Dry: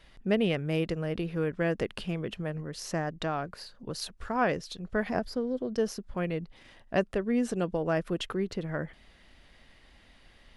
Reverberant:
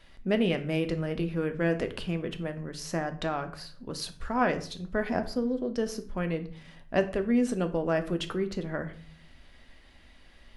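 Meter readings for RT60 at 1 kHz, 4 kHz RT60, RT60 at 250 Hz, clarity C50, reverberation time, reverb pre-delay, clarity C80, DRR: 0.45 s, 0.35 s, 0.70 s, 13.5 dB, 0.50 s, 3 ms, 18.0 dB, 7.0 dB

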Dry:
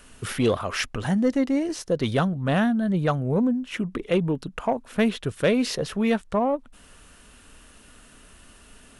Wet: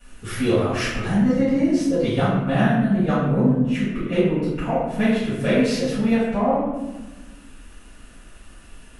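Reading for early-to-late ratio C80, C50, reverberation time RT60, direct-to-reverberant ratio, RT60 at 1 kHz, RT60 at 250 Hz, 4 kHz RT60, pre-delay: 3.0 dB, -1.0 dB, 1.2 s, -17.0 dB, 1.0 s, 2.0 s, 0.70 s, 5 ms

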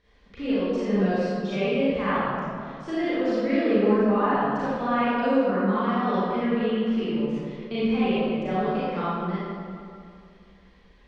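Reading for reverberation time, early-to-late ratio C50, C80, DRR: 2.4 s, -6.5 dB, -2.5 dB, -12.0 dB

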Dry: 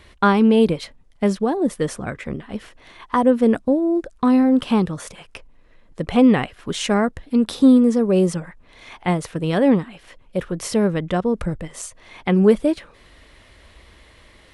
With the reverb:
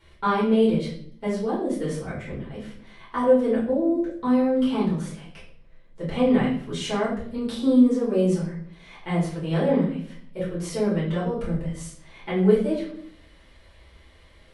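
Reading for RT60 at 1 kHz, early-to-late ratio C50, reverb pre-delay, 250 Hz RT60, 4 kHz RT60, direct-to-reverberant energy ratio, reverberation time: 0.50 s, 5.0 dB, 5 ms, 0.80 s, 0.50 s, -8.5 dB, 0.60 s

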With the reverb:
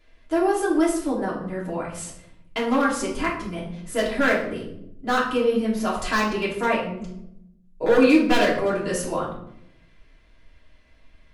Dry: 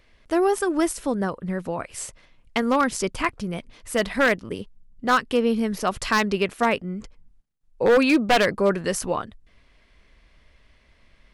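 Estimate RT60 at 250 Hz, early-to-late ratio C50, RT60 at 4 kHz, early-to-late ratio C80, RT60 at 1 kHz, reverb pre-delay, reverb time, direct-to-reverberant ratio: 1.2 s, 5.0 dB, 0.50 s, 9.0 dB, 0.65 s, 3 ms, 0.75 s, -6.5 dB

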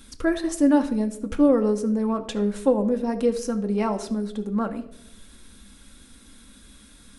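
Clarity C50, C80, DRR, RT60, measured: 13.5 dB, 16.0 dB, 5.5 dB, 0.80 s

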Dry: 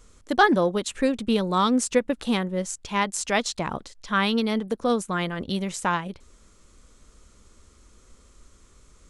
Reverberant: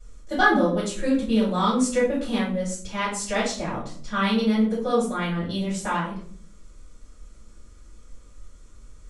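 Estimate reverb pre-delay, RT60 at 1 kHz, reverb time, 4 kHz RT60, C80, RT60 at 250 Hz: 3 ms, 0.45 s, 0.50 s, 0.35 s, 10.0 dB, 0.80 s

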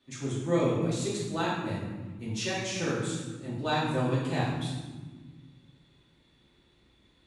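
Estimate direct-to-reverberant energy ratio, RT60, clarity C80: -9.0 dB, 1.5 s, 3.0 dB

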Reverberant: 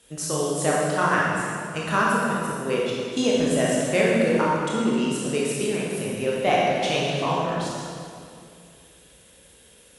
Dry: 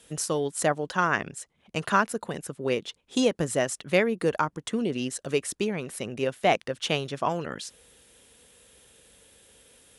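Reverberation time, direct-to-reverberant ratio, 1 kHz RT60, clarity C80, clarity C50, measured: 2.4 s, -5.5 dB, 2.2 s, -0.5 dB, -2.5 dB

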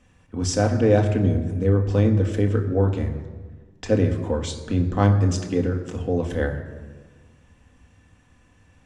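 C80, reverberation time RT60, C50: 11.0 dB, 1.5 s, 9.5 dB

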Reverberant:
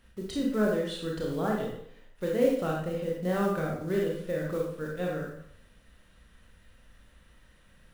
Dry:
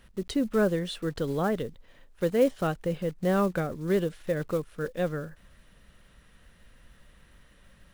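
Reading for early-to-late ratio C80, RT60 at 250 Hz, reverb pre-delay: 6.0 dB, 0.70 s, 24 ms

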